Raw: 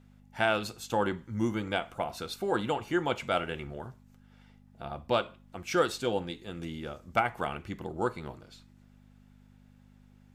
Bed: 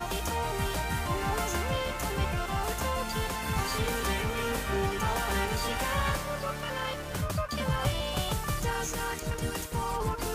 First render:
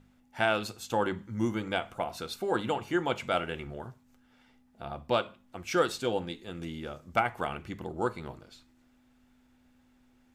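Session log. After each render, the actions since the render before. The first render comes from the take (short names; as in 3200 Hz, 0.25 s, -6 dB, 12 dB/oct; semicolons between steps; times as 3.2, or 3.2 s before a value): de-hum 50 Hz, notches 4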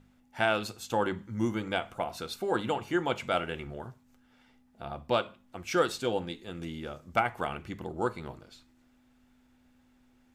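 nothing audible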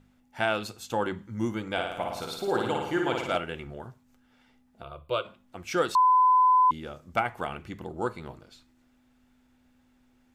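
1.72–3.37 flutter echo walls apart 9.5 m, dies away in 0.87 s; 4.83–5.25 fixed phaser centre 1200 Hz, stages 8; 5.95–6.71 bleep 1010 Hz -16.5 dBFS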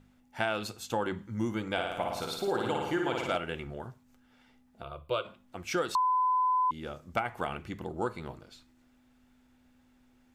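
compressor 5:1, threshold -26 dBFS, peak gain reduction 7 dB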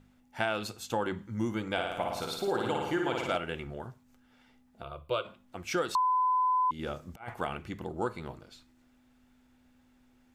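6.79–7.34 negative-ratio compressor -38 dBFS, ratio -0.5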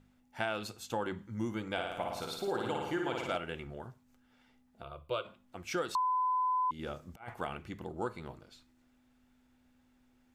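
gain -4 dB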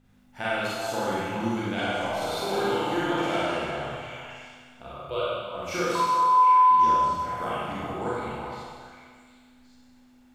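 delay with a stepping band-pass 0.375 s, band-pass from 860 Hz, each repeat 1.4 oct, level -4 dB; Schroeder reverb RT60 1.7 s, combs from 31 ms, DRR -8.5 dB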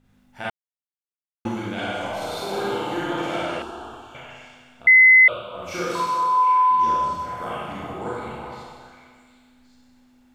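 0.5–1.45 mute; 3.62–4.15 fixed phaser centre 560 Hz, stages 6; 4.87–5.28 bleep 2040 Hz -8 dBFS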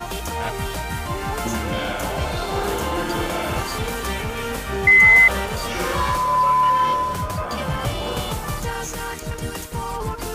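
add bed +4 dB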